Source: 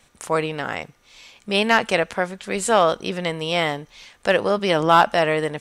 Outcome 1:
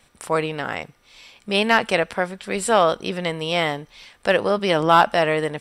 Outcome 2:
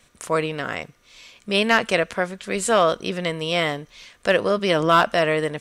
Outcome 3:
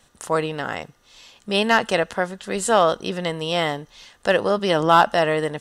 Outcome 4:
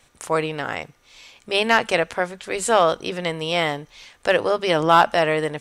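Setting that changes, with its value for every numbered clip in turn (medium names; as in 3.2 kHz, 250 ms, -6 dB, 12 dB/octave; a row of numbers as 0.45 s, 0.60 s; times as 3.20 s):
band-stop, frequency: 6.6 kHz, 830 Hz, 2.3 kHz, 200 Hz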